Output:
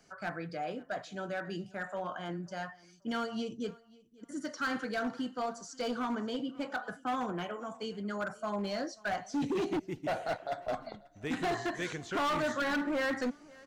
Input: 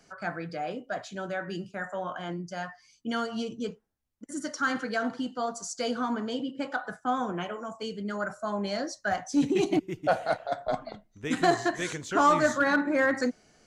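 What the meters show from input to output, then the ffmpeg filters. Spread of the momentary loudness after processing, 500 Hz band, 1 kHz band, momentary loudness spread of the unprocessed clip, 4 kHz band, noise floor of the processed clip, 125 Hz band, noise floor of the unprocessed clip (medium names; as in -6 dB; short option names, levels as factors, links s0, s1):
9 LU, -6.0 dB, -6.5 dB, 12 LU, -4.0 dB, -60 dBFS, -4.5 dB, -66 dBFS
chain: -filter_complex "[0:a]acrossover=split=5400[s0][s1];[s1]acompressor=threshold=0.002:ratio=4:attack=1:release=60[s2];[s0][s2]amix=inputs=2:normalize=0,volume=17.8,asoftclip=hard,volume=0.0562,aecho=1:1:537|1074:0.0668|0.0187,volume=0.668"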